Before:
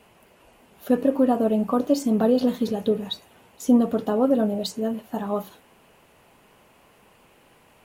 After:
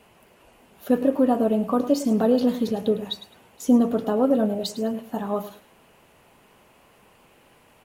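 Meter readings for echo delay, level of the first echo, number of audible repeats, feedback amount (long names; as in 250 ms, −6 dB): 105 ms, −14.0 dB, 2, 21%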